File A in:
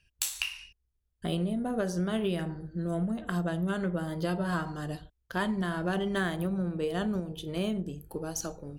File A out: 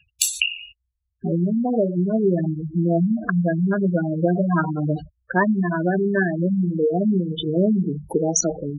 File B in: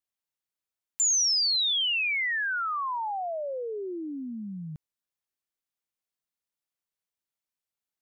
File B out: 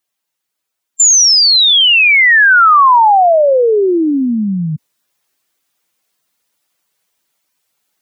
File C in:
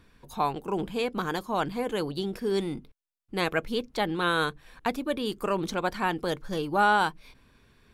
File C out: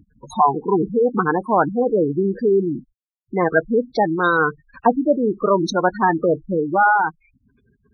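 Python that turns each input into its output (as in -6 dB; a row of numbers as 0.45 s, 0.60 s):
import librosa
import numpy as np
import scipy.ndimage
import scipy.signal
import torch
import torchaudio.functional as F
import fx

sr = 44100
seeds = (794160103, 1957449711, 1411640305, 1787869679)

y = fx.spec_gate(x, sr, threshold_db=-10, keep='strong')
y = fx.highpass(y, sr, hz=180.0, slope=6)
y = fx.rider(y, sr, range_db=4, speed_s=0.5)
y = y * 10.0 ** (-3 / 20.0) / np.max(np.abs(y))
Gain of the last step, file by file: +14.0 dB, +20.0 dB, +12.0 dB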